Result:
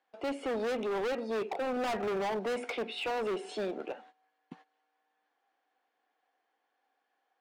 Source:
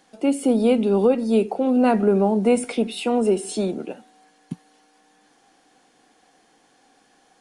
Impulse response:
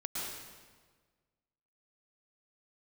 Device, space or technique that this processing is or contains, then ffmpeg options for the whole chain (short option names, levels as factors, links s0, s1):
walkie-talkie: -af "highpass=580,lowpass=2500,asoftclip=type=hard:threshold=0.0299,agate=range=0.141:threshold=0.002:ratio=16:detection=peak"